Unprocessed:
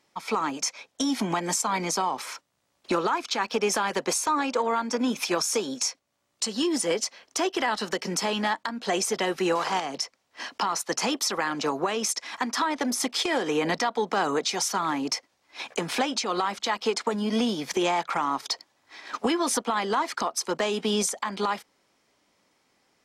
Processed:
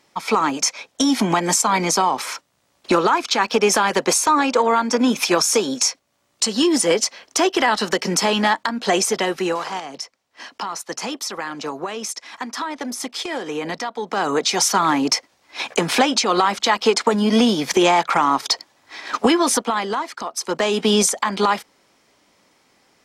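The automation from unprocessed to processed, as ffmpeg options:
ffmpeg -i in.wav -af "volume=31dB,afade=type=out:start_time=8.86:duration=0.85:silence=0.334965,afade=type=in:start_time=14.01:duration=0.65:silence=0.298538,afade=type=out:start_time=19.25:duration=0.92:silence=0.237137,afade=type=in:start_time=20.17:duration=0.7:silence=0.251189" out.wav

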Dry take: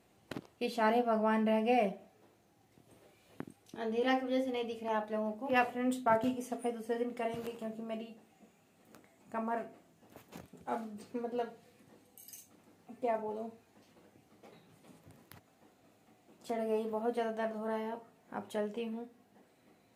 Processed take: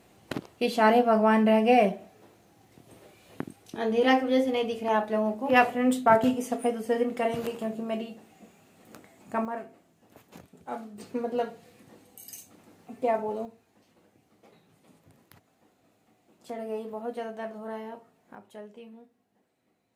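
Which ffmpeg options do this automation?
ffmpeg -i in.wav -af "asetnsamples=nb_out_samples=441:pad=0,asendcmd='9.45 volume volume 1dB;10.98 volume volume 7.5dB;13.45 volume volume -0.5dB;18.35 volume volume -8dB',volume=9dB" out.wav

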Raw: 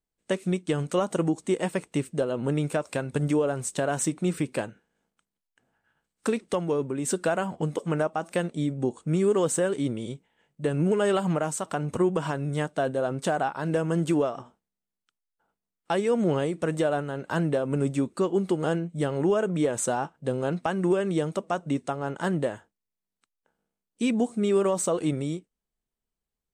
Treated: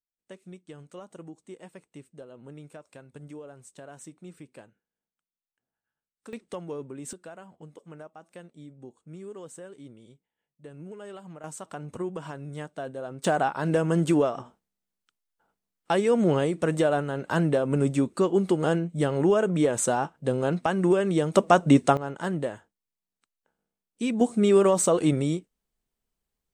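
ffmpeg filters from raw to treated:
ffmpeg -i in.wav -af "asetnsamples=nb_out_samples=441:pad=0,asendcmd='6.33 volume volume -9.5dB;7.13 volume volume -18.5dB;11.44 volume volume -9dB;13.24 volume volume 2dB;21.34 volume volume 10dB;21.97 volume volume -2.5dB;24.21 volume volume 4dB',volume=-18.5dB" out.wav

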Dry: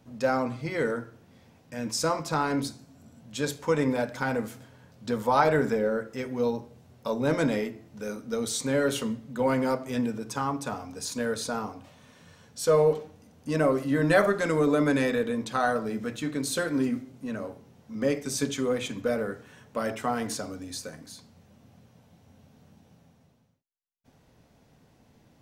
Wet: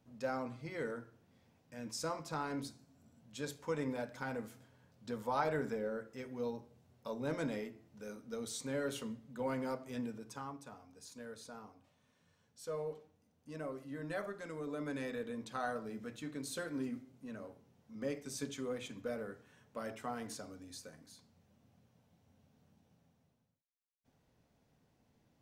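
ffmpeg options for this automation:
ffmpeg -i in.wav -af "volume=-6dB,afade=type=out:start_time=10.09:duration=0.59:silence=0.446684,afade=type=in:start_time=14.62:duration=0.8:silence=0.473151" out.wav

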